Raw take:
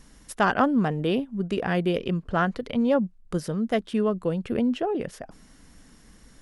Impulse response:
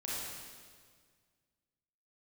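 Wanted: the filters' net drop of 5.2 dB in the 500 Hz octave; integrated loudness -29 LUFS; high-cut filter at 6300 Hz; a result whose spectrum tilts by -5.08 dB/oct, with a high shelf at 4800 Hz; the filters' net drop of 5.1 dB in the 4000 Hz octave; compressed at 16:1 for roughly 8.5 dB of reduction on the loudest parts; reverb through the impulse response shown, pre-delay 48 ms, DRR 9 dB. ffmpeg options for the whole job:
-filter_complex "[0:a]lowpass=6.3k,equalizer=f=500:t=o:g=-6.5,equalizer=f=4k:t=o:g=-4.5,highshelf=f=4.8k:g=-6.5,acompressor=threshold=-27dB:ratio=16,asplit=2[a][b];[1:a]atrim=start_sample=2205,adelay=48[c];[b][c]afir=irnorm=-1:irlink=0,volume=-11.5dB[d];[a][d]amix=inputs=2:normalize=0,volume=3.5dB"

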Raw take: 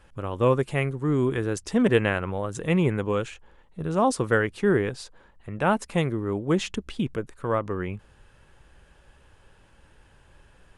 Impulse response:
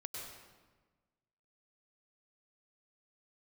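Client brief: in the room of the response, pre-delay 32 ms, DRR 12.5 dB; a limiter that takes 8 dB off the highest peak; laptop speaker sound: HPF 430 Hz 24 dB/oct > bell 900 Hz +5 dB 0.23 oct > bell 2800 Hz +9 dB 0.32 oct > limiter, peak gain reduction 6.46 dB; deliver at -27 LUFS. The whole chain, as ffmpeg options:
-filter_complex "[0:a]alimiter=limit=-15dB:level=0:latency=1,asplit=2[a][b];[1:a]atrim=start_sample=2205,adelay=32[c];[b][c]afir=irnorm=-1:irlink=0,volume=-11dB[d];[a][d]amix=inputs=2:normalize=0,highpass=f=430:w=0.5412,highpass=f=430:w=1.3066,equalizer=f=900:t=o:w=0.23:g=5,equalizer=f=2.8k:t=o:w=0.32:g=9,volume=5dB,alimiter=limit=-14dB:level=0:latency=1"

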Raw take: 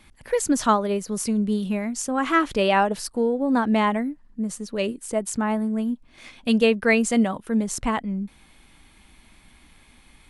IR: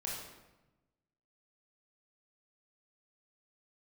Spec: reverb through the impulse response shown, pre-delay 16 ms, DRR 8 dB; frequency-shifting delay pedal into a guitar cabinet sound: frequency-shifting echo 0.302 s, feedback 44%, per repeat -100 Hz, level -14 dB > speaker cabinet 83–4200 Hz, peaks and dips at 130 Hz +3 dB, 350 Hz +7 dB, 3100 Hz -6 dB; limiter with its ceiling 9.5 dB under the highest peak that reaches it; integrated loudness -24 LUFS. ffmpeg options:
-filter_complex "[0:a]alimiter=limit=-16.5dB:level=0:latency=1,asplit=2[a][b];[1:a]atrim=start_sample=2205,adelay=16[c];[b][c]afir=irnorm=-1:irlink=0,volume=-9.5dB[d];[a][d]amix=inputs=2:normalize=0,asplit=5[e][f][g][h][i];[f]adelay=302,afreqshift=-100,volume=-14dB[j];[g]adelay=604,afreqshift=-200,volume=-21.1dB[k];[h]adelay=906,afreqshift=-300,volume=-28.3dB[l];[i]adelay=1208,afreqshift=-400,volume=-35.4dB[m];[e][j][k][l][m]amix=inputs=5:normalize=0,highpass=83,equalizer=f=130:t=q:w=4:g=3,equalizer=f=350:t=q:w=4:g=7,equalizer=f=3.1k:t=q:w=4:g=-6,lowpass=f=4.2k:w=0.5412,lowpass=f=4.2k:w=1.3066,volume=1dB"

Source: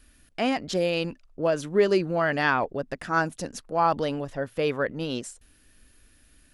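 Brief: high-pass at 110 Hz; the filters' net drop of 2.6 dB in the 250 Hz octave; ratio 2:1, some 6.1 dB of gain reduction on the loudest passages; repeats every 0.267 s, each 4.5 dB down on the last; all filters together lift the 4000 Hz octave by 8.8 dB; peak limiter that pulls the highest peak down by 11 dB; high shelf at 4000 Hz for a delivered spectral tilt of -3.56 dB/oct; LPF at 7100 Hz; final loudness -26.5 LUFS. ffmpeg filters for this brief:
-af "highpass=110,lowpass=7.1k,equalizer=f=250:t=o:g=-3.5,highshelf=f=4k:g=6.5,equalizer=f=4k:t=o:g=8.5,acompressor=threshold=-27dB:ratio=2,alimiter=limit=-22dB:level=0:latency=1,aecho=1:1:267|534|801|1068|1335|1602|1869|2136|2403:0.596|0.357|0.214|0.129|0.0772|0.0463|0.0278|0.0167|0.01,volume=5dB"

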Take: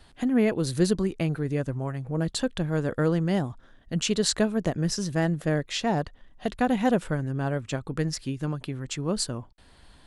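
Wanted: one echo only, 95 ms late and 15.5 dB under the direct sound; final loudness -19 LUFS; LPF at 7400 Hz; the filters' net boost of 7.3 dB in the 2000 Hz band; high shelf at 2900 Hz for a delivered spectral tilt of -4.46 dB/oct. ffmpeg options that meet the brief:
-af "lowpass=7.4k,equalizer=f=2k:t=o:g=7,highshelf=f=2.9k:g=6,aecho=1:1:95:0.168,volume=7dB"

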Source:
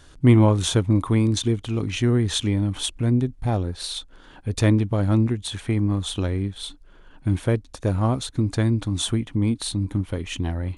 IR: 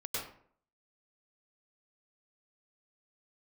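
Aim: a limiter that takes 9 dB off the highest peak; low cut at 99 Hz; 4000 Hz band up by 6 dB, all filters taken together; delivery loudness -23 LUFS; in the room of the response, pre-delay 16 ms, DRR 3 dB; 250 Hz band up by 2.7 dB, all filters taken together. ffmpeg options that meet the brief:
-filter_complex "[0:a]highpass=99,equalizer=f=250:t=o:g=3.5,equalizer=f=4k:t=o:g=7,alimiter=limit=-11dB:level=0:latency=1,asplit=2[a][b];[1:a]atrim=start_sample=2205,adelay=16[c];[b][c]afir=irnorm=-1:irlink=0,volume=-6dB[d];[a][d]amix=inputs=2:normalize=0,volume=-1.5dB"

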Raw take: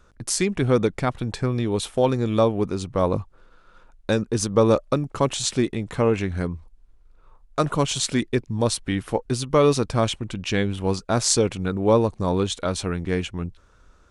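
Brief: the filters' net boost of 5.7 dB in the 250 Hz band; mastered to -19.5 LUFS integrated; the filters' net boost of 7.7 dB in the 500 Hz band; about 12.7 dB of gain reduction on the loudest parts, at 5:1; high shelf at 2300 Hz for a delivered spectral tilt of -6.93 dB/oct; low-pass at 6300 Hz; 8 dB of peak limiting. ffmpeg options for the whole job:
-af "lowpass=6.3k,equalizer=f=250:t=o:g=5,equalizer=f=500:t=o:g=8,highshelf=f=2.3k:g=-8.5,acompressor=threshold=-21dB:ratio=5,volume=9dB,alimiter=limit=-8.5dB:level=0:latency=1"

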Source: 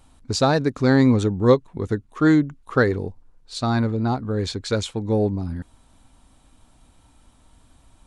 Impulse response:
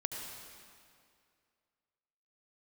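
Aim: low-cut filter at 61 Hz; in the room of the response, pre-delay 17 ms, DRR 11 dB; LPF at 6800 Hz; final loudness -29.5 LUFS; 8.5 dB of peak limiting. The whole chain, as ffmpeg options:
-filter_complex "[0:a]highpass=61,lowpass=6.8k,alimiter=limit=-12.5dB:level=0:latency=1,asplit=2[a][b];[1:a]atrim=start_sample=2205,adelay=17[c];[b][c]afir=irnorm=-1:irlink=0,volume=-12.5dB[d];[a][d]amix=inputs=2:normalize=0,volume=-5.5dB"

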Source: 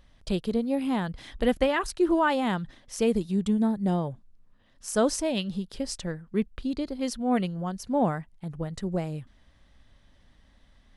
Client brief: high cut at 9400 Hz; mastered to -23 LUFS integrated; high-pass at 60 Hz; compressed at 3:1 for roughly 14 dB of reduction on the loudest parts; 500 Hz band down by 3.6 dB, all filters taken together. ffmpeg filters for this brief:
-af "highpass=60,lowpass=9.4k,equalizer=f=500:t=o:g=-4.5,acompressor=threshold=-41dB:ratio=3,volume=18.5dB"

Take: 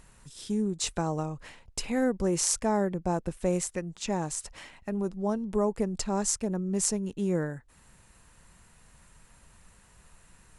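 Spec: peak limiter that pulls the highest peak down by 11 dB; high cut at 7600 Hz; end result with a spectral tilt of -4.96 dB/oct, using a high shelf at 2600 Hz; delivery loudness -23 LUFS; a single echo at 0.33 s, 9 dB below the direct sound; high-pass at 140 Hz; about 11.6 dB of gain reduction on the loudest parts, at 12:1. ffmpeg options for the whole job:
-af "highpass=140,lowpass=7.6k,highshelf=f=2.6k:g=-5.5,acompressor=threshold=-34dB:ratio=12,alimiter=level_in=9dB:limit=-24dB:level=0:latency=1,volume=-9dB,aecho=1:1:330:0.355,volume=19dB"

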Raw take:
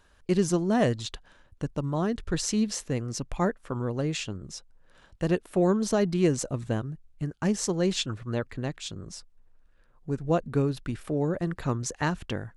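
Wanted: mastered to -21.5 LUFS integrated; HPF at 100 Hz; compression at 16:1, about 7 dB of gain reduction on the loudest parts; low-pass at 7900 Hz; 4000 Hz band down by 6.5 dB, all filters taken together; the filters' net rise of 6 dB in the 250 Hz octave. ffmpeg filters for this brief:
-af "highpass=100,lowpass=7.9k,equalizer=f=250:t=o:g=8.5,equalizer=f=4k:t=o:g=-8.5,acompressor=threshold=-21dB:ratio=16,volume=7.5dB"

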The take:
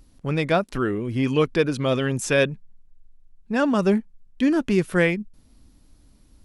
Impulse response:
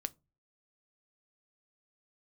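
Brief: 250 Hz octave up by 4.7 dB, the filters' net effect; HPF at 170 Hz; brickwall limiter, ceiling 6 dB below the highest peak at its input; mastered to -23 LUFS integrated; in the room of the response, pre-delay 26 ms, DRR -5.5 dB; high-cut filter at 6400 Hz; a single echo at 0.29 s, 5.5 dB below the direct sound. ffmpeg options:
-filter_complex "[0:a]highpass=170,lowpass=6.4k,equalizer=f=250:t=o:g=7,alimiter=limit=-11dB:level=0:latency=1,aecho=1:1:290:0.531,asplit=2[a][b];[1:a]atrim=start_sample=2205,adelay=26[c];[b][c]afir=irnorm=-1:irlink=0,volume=6.5dB[d];[a][d]amix=inputs=2:normalize=0,volume=-8.5dB"

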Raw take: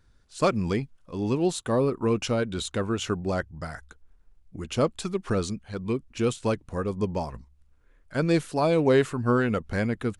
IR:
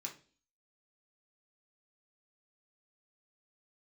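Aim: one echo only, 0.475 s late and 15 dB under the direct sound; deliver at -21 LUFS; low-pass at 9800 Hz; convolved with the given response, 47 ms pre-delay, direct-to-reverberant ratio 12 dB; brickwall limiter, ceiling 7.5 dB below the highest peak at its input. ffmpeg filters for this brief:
-filter_complex "[0:a]lowpass=9.8k,alimiter=limit=-17.5dB:level=0:latency=1,aecho=1:1:475:0.178,asplit=2[a][b];[1:a]atrim=start_sample=2205,adelay=47[c];[b][c]afir=irnorm=-1:irlink=0,volume=-9.5dB[d];[a][d]amix=inputs=2:normalize=0,volume=7.5dB"

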